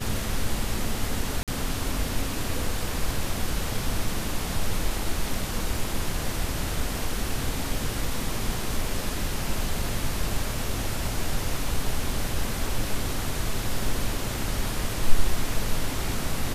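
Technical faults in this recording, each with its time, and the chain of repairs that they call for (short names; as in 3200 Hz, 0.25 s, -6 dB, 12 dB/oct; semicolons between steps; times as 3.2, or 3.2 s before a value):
1.43–1.48 gap 47 ms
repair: interpolate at 1.43, 47 ms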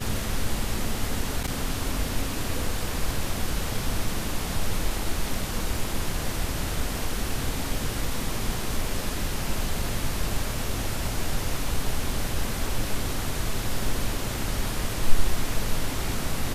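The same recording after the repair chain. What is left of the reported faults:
none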